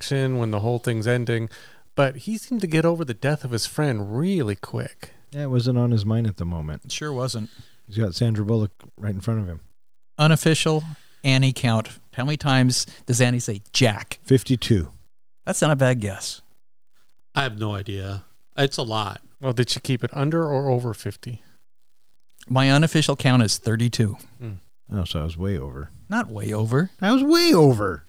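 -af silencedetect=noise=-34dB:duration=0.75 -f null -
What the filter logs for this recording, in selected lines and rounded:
silence_start: 16.37
silence_end: 17.35 | silence_duration: 0.98
silence_start: 21.36
silence_end: 22.39 | silence_duration: 1.02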